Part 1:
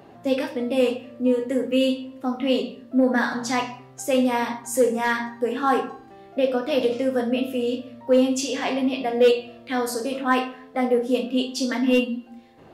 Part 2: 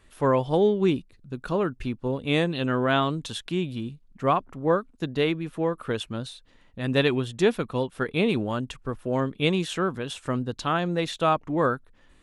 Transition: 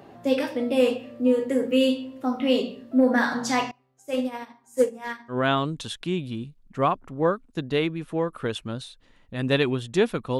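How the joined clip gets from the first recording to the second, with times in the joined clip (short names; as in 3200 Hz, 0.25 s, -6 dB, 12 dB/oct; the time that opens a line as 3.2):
part 1
3.71–5.38 upward expander 2.5:1, over -29 dBFS
5.33 switch to part 2 from 2.78 s, crossfade 0.10 s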